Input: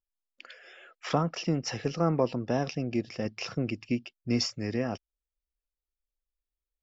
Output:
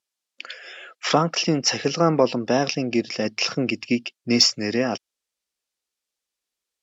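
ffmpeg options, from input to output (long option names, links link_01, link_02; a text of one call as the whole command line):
ffmpeg -i in.wav -af "highpass=190,lowpass=5600,aemphasis=mode=production:type=75fm,acontrast=65,volume=3dB" out.wav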